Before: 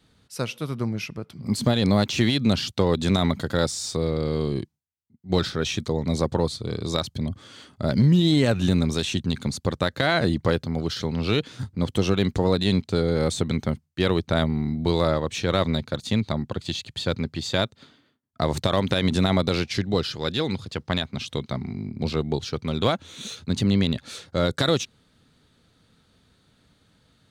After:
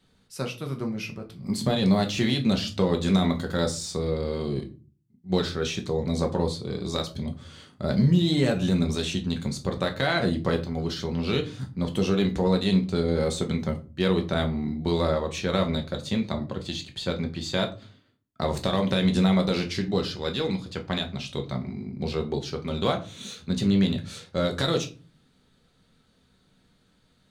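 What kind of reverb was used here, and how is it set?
rectangular room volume 170 cubic metres, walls furnished, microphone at 1.1 metres
level −4.5 dB

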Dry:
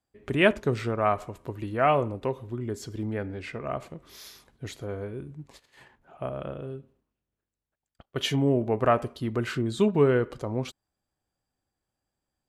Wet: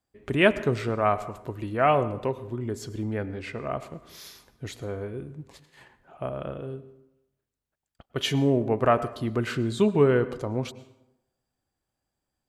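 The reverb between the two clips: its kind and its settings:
dense smooth reverb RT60 0.9 s, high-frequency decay 0.6×, pre-delay 90 ms, DRR 16 dB
level +1 dB

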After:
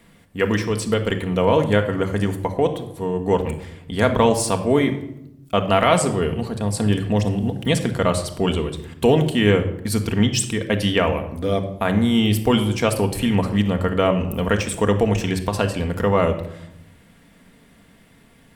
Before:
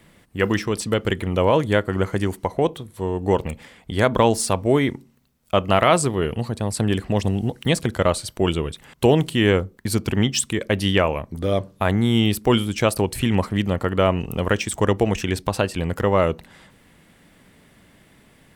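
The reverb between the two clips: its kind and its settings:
rectangular room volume 2,300 cubic metres, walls furnished, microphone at 1.7 metres
level −1 dB

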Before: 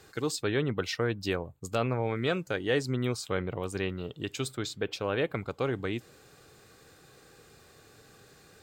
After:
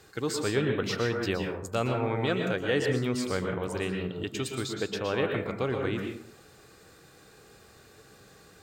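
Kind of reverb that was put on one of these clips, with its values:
dense smooth reverb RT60 0.59 s, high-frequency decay 0.55×, pre-delay 105 ms, DRR 2.5 dB

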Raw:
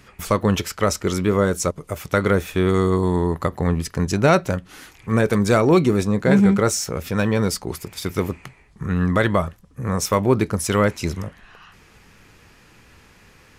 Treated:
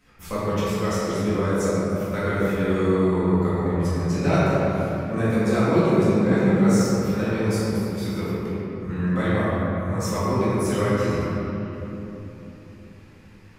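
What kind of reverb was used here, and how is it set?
rectangular room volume 200 cubic metres, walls hard, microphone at 2 metres
level −16 dB

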